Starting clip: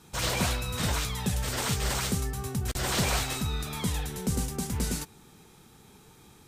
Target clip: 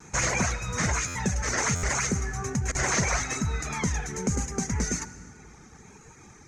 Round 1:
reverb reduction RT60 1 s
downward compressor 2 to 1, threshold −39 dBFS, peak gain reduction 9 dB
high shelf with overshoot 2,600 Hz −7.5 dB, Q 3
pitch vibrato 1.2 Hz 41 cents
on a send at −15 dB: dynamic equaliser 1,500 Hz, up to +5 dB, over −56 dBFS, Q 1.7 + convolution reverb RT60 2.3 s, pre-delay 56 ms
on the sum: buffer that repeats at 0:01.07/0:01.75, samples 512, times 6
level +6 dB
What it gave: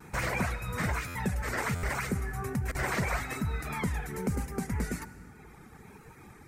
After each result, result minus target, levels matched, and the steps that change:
8,000 Hz band −10.5 dB; downward compressor: peak gain reduction +3.5 dB
add after downward compressor: low-pass with resonance 6,400 Hz, resonance Q 10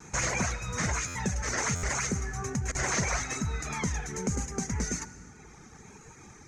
downward compressor: peak gain reduction +3.5 dB
change: downward compressor 2 to 1, threshold −32 dBFS, peak gain reduction 5.5 dB

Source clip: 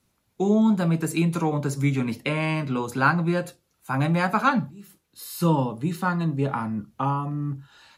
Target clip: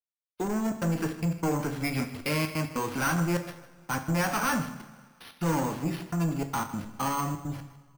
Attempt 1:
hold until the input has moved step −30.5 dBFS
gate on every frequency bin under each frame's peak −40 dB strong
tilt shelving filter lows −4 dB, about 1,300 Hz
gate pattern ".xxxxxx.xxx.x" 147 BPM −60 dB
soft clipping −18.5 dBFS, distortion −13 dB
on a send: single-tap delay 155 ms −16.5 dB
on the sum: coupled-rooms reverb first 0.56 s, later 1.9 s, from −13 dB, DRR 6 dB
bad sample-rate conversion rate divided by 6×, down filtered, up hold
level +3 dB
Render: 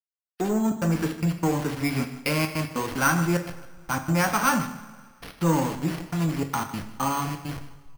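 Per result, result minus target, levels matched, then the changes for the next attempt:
hold until the input has moved: distortion +8 dB; soft clipping: distortion −7 dB
change: hold until the input has moved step −38 dBFS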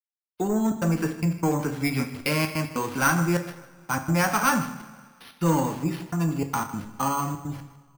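soft clipping: distortion −6 dB
change: soft clipping −27.5 dBFS, distortion −7 dB

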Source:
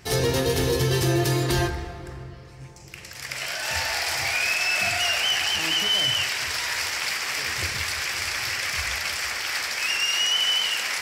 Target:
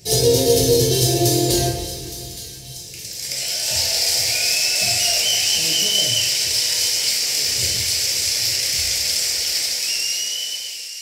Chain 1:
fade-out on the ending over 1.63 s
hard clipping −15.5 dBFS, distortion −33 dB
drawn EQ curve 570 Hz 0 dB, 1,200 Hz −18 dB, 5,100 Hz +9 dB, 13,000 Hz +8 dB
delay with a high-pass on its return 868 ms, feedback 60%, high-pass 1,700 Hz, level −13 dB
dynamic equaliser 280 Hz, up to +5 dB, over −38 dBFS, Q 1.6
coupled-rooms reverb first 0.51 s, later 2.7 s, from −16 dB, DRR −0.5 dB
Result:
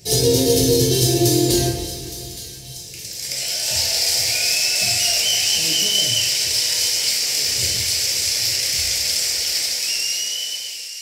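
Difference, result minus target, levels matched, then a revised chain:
250 Hz band +3.0 dB
fade-out on the ending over 1.63 s
hard clipping −15.5 dBFS, distortion −33 dB
drawn EQ curve 570 Hz 0 dB, 1,200 Hz −18 dB, 5,100 Hz +9 dB, 13,000 Hz +8 dB
delay with a high-pass on its return 868 ms, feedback 60%, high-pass 1,700 Hz, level −13 dB
dynamic equaliser 590 Hz, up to +5 dB, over −38 dBFS, Q 1.6
coupled-rooms reverb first 0.51 s, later 2.7 s, from −16 dB, DRR −0.5 dB

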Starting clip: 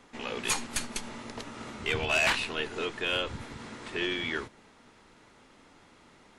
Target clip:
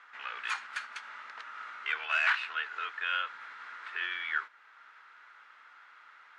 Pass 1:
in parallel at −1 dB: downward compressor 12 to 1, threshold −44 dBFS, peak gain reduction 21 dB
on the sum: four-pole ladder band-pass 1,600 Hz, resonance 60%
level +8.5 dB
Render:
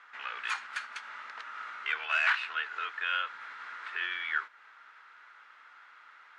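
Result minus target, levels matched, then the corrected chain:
downward compressor: peak gain reduction −9 dB
in parallel at −1 dB: downward compressor 12 to 1, threshold −54 dBFS, peak gain reduction 30 dB
on the sum: four-pole ladder band-pass 1,600 Hz, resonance 60%
level +8.5 dB

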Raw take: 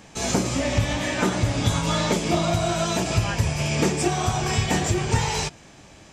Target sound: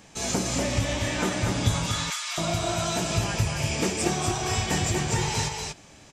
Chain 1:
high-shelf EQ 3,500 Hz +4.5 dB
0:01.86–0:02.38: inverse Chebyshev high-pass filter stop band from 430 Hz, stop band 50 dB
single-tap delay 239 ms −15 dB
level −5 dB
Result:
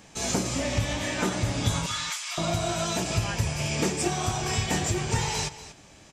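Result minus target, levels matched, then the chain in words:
echo-to-direct −11 dB
high-shelf EQ 3,500 Hz +4.5 dB
0:01.86–0:02.38: inverse Chebyshev high-pass filter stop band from 430 Hz, stop band 50 dB
single-tap delay 239 ms −4 dB
level −5 dB

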